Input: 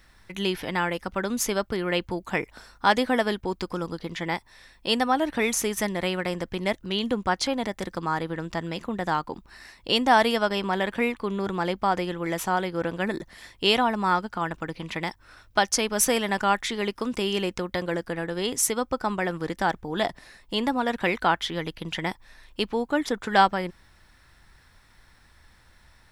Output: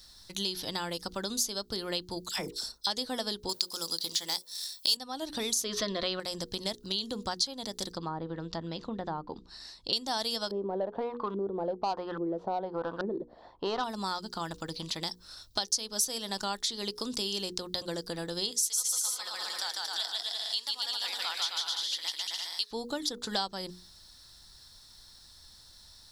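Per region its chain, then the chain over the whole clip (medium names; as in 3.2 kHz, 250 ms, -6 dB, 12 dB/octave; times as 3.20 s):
2.29–2.87 s: gate -50 dBFS, range -14 dB + treble shelf 3.4 kHz +9 dB + phase dispersion lows, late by 62 ms, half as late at 1.2 kHz
3.49–4.97 s: hum notches 60/120/180/240/300/360/420/480/540/600 Hz + waveshaping leveller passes 1 + RIAA curve recording
5.64–6.20 s: FFT filter 130 Hz 0 dB, 1 kHz +11 dB, 4.1 kHz +4 dB, 8.8 kHz -22 dB + transient shaper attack +2 dB, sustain +6 dB + Butterworth band-stop 840 Hz, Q 3.3
7.92–9.93 s: low-pass 2.6 kHz 6 dB/octave + low-pass that closes with the level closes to 970 Hz, closed at -22.5 dBFS
10.51–13.84 s: LFO low-pass saw up 1.2 Hz 330–1500 Hz + overdrive pedal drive 13 dB, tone 2.4 kHz, clips at -7.5 dBFS
18.51–22.71 s: high-pass 1.4 kHz + bouncing-ball echo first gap 150 ms, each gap 0.75×, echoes 6, each echo -2 dB
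whole clip: resonant high shelf 3.1 kHz +11.5 dB, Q 3; hum notches 60/120/180/240/300/360/420/480 Hz; compression 3:1, threshold -27 dBFS; trim -4.5 dB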